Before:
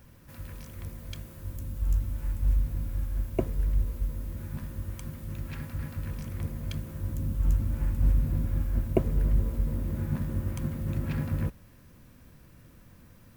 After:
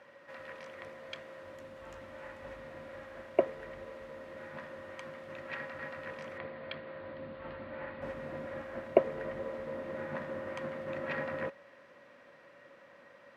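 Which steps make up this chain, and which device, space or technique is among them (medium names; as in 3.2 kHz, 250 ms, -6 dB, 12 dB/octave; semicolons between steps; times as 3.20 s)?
tin-can telephone (band-pass 580–2600 Hz; small resonant body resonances 560/1900 Hz, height 13 dB, ringing for 60 ms); 6.38–8.02 s: elliptic low-pass 4.4 kHz; trim +6 dB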